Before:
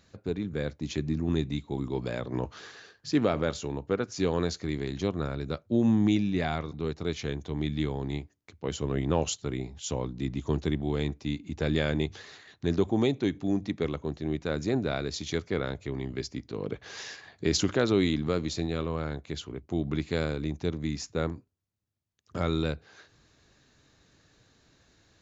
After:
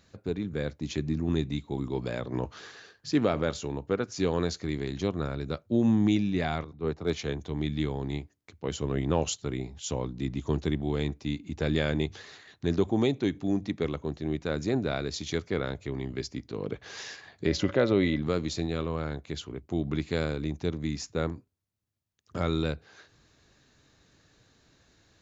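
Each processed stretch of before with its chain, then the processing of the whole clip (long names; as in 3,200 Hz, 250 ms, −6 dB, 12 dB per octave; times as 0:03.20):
0:06.64–0:07.39: dynamic equaliser 760 Hz, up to +5 dB, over −43 dBFS, Q 0.79 + hard clipping −16.5 dBFS + multiband upward and downward expander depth 100%
0:17.47–0:18.22: high-frequency loss of the air 150 metres + hollow resonant body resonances 560/2,000 Hz, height 14 dB, ringing for 90 ms
whole clip: no processing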